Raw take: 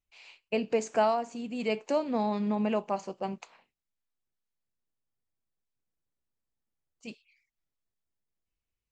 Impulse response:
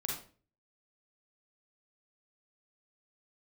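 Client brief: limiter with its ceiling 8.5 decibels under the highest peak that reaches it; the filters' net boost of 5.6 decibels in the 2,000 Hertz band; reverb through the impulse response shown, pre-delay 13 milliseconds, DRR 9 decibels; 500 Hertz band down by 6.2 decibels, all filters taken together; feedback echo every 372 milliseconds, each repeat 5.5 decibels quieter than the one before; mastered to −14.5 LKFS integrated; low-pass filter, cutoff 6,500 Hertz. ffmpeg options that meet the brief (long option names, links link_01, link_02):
-filter_complex "[0:a]lowpass=6500,equalizer=frequency=500:width_type=o:gain=-9,equalizer=frequency=2000:width_type=o:gain=8,alimiter=limit=-23dB:level=0:latency=1,aecho=1:1:372|744|1116|1488|1860|2232|2604:0.531|0.281|0.149|0.079|0.0419|0.0222|0.0118,asplit=2[link_01][link_02];[1:a]atrim=start_sample=2205,adelay=13[link_03];[link_02][link_03]afir=irnorm=-1:irlink=0,volume=-11dB[link_04];[link_01][link_04]amix=inputs=2:normalize=0,volume=19.5dB"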